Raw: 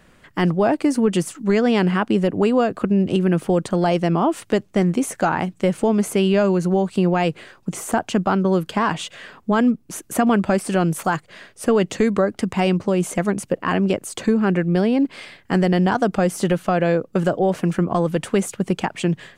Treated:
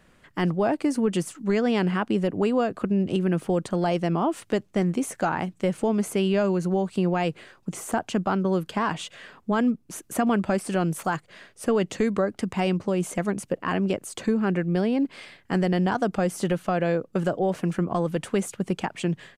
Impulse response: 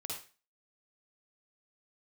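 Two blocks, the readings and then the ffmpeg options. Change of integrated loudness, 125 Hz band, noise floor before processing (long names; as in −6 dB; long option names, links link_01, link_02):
−5.5 dB, −5.5 dB, −55 dBFS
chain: -af "aresample=32000,aresample=44100,volume=-5.5dB"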